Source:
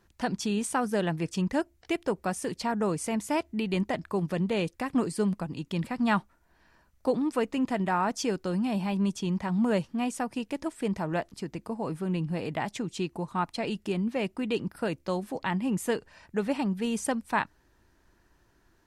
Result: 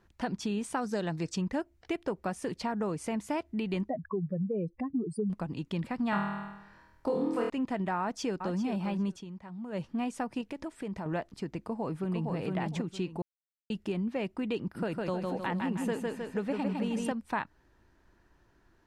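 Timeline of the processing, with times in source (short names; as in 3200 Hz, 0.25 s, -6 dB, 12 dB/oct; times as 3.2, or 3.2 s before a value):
0.77–1.35 spectral gain 3600–8400 Hz +9 dB
3.89–5.3 spectral contrast raised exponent 2.7
6.1–7.5 flutter echo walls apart 4.3 m, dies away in 0.81 s
8–8.58 echo throw 0.4 s, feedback 15%, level -9.5 dB
9.12–9.85 dip -15 dB, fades 0.13 s
10.41–11.06 compressor 3:1, threshold -35 dBFS
11.57–12.35 echo throw 0.46 s, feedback 20%, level -2 dB
13.22–13.7 mute
14.6–17.12 feedback echo 0.156 s, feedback 45%, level -3.5 dB
whole clip: high shelf 5400 Hz -11 dB; compressor 2.5:1, threshold -30 dBFS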